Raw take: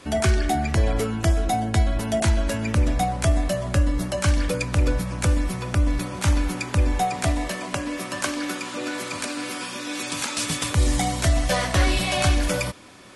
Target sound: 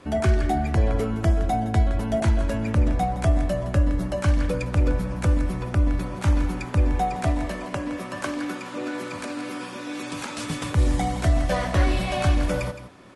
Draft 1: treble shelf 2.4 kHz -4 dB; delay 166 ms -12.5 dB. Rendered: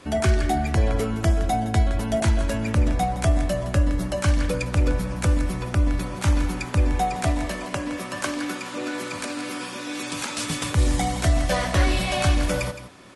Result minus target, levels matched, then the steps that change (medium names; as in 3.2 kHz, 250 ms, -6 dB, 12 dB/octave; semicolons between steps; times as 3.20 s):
4 kHz band +5.0 dB
change: treble shelf 2.4 kHz -12 dB